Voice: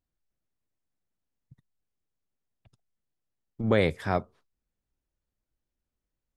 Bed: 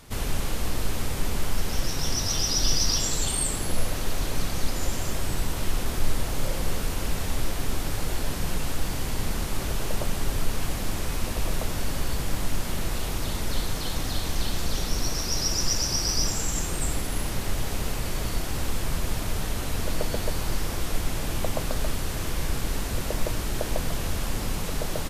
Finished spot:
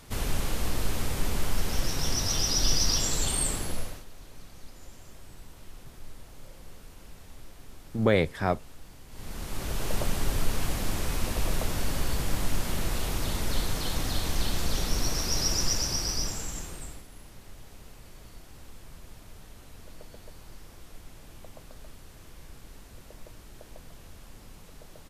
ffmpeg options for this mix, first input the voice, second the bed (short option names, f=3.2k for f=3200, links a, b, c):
-filter_complex "[0:a]adelay=4350,volume=0.5dB[a];[1:a]volume=18dB,afade=t=out:st=3.48:d=0.57:silence=0.112202,afade=t=in:st=9.09:d=0.89:silence=0.105925,afade=t=out:st=15.5:d=1.56:silence=0.112202[b];[a][b]amix=inputs=2:normalize=0"